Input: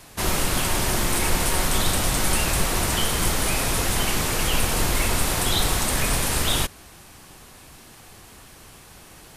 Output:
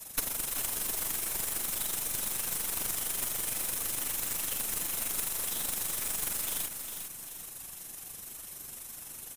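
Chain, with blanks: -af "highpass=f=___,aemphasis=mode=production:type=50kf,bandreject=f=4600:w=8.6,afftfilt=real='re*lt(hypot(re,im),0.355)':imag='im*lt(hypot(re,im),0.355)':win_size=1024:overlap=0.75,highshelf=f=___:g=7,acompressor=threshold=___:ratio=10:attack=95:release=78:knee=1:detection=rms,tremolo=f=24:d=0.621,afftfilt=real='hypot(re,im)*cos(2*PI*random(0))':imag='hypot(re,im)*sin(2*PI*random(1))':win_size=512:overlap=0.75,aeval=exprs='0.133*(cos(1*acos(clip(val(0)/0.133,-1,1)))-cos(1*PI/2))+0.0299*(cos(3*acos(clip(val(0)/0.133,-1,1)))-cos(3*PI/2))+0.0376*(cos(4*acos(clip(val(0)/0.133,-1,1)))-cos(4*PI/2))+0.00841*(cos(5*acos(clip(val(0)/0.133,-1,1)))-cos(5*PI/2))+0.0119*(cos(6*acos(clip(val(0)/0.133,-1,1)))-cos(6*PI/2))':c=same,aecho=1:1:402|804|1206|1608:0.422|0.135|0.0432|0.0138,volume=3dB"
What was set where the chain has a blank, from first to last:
54, 5400, -27dB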